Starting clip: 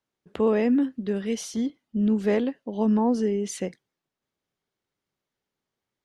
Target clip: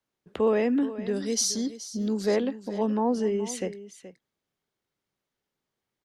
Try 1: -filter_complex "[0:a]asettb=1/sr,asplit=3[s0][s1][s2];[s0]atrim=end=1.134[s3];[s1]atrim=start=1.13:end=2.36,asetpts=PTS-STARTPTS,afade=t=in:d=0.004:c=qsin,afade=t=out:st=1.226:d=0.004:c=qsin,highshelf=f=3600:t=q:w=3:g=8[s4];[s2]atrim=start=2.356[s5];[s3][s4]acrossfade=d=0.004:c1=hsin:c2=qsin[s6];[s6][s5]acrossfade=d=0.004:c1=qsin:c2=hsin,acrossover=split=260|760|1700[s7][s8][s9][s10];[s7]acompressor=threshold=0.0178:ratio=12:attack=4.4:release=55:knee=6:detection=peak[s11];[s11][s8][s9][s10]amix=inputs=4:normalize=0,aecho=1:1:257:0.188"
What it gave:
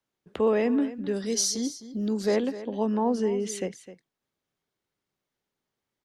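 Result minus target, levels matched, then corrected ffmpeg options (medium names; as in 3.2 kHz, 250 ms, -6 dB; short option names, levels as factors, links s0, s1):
echo 168 ms early
-filter_complex "[0:a]asettb=1/sr,asplit=3[s0][s1][s2];[s0]atrim=end=1.134[s3];[s1]atrim=start=1.13:end=2.36,asetpts=PTS-STARTPTS,afade=t=in:d=0.004:c=qsin,afade=t=out:st=1.226:d=0.004:c=qsin,highshelf=f=3600:t=q:w=3:g=8[s4];[s2]atrim=start=2.356[s5];[s3][s4]acrossfade=d=0.004:c1=hsin:c2=qsin[s6];[s6][s5]acrossfade=d=0.004:c1=qsin:c2=hsin,acrossover=split=260|760|1700[s7][s8][s9][s10];[s7]acompressor=threshold=0.0178:ratio=12:attack=4.4:release=55:knee=6:detection=peak[s11];[s11][s8][s9][s10]amix=inputs=4:normalize=0,aecho=1:1:425:0.188"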